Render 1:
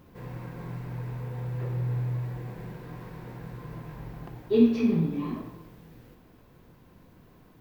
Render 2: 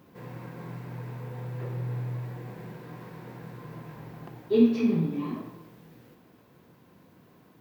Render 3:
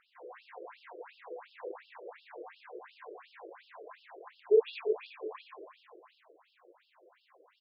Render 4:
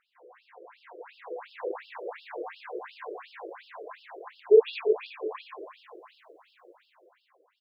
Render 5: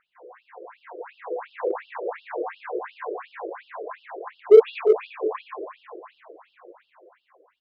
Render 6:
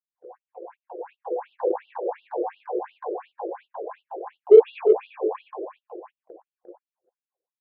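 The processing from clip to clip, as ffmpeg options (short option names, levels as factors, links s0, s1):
-af "highpass=130"
-af "aecho=1:1:120|258|416.7|599.2|809.1:0.631|0.398|0.251|0.158|0.1,afftfilt=real='re*between(b*sr/1024,440*pow(3900/440,0.5+0.5*sin(2*PI*2.8*pts/sr))/1.41,440*pow(3900/440,0.5+0.5*sin(2*PI*2.8*pts/sr))*1.41)':imag='im*between(b*sr/1024,440*pow(3900/440,0.5+0.5*sin(2*PI*2.8*pts/sr))/1.41,440*pow(3900/440,0.5+0.5*sin(2*PI*2.8*pts/sr))*1.41)':win_size=1024:overlap=0.75,volume=1.26"
-af "dynaudnorm=f=350:g=7:m=5.62,volume=0.531"
-filter_complex "[0:a]lowpass=2000,asplit=2[s0][s1];[s1]asoftclip=type=hard:threshold=0.0631,volume=0.355[s2];[s0][s2]amix=inputs=2:normalize=0,volume=1.78"
-af "highpass=240,equalizer=f=350:t=q:w=4:g=8,equalizer=f=530:t=q:w=4:g=6,equalizer=f=810:t=q:w=4:g=9,equalizer=f=1300:t=q:w=4:g=-8,equalizer=f=2000:t=q:w=4:g=-7,lowpass=f=3400:w=0.5412,lowpass=f=3400:w=1.3066,agate=range=0.0178:threshold=0.00891:ratio=16:detection=peak,volume=0.668"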